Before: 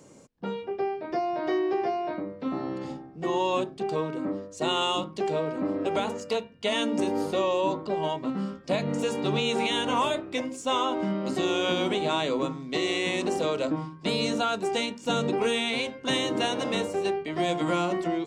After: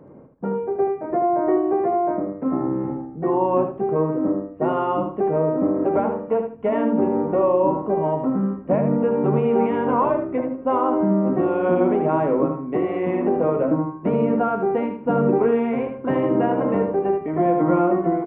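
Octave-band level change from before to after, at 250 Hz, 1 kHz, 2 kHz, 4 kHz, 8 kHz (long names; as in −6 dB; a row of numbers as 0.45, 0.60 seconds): +8.5 dB, +6.0 dB, −4.5 dB, below −20 dB, below −40 dB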